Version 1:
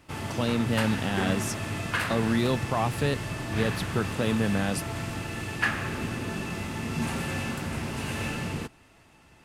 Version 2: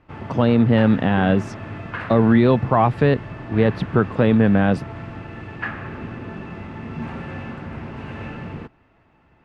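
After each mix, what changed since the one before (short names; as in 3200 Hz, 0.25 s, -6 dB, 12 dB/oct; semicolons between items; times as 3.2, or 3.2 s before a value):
speech +11.0 dB; master: add LPF 1900 Hz 12 dB/oct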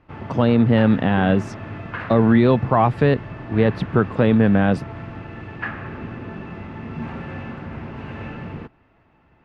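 background: add air absorption 63 m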